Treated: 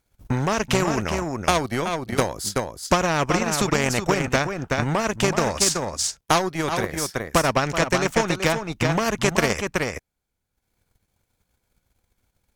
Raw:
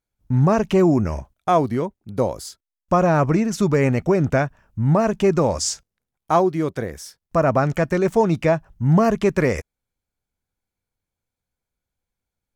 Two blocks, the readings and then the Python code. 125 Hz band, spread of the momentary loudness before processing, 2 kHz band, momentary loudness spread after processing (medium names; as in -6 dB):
-5.5 dB, 10 LU, +5.5 dB, 5 LU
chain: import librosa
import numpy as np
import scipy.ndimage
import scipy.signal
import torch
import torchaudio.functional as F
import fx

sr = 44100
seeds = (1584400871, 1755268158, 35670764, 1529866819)

p1 = fx.cheby_harmonics(x, sr, harmonics=(5,), levels_db=(-26,), full_scale_db=-6.0)
p2 = p1 + fx.echo_single(p1, sr, ms=377, db=-7.0, dry=0)
p3 = fx.transient(p2, sr, attack_db=10, sustain_db=-9)
p4 = fx.spectral_comp(p3, sr, ratio=2.0)
y = p4 * 10.0 ** (-5.0 / 20.0)